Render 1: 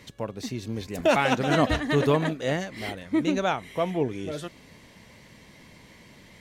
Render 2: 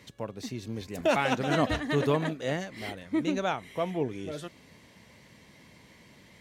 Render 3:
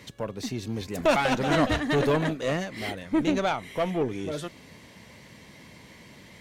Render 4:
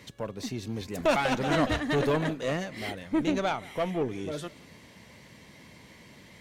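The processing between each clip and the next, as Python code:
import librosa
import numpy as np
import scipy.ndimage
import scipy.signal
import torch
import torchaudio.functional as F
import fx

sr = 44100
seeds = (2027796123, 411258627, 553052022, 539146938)

y1 = scipy.signal.sosfilt(scipy.signal.butter(2, 56.0, 'highpass', fs=sr, output='sos'), x)
y1 = y1 * 10.0 ** (-4.0 / 20.0)
y2 = fx.diode_clip(y1, sr, knee_db=-26.0)
y2 = y2 * 10.0 ** (6.0 / 20.0)
y3 = y2 + 10.0 ** (-22.5 / 20.0) * np.pad(y2, (int(173 * sr / 1000.0), 0))[:len(y2)]
y3 = y3 * 10.0 ** (-2.5 / 20.0)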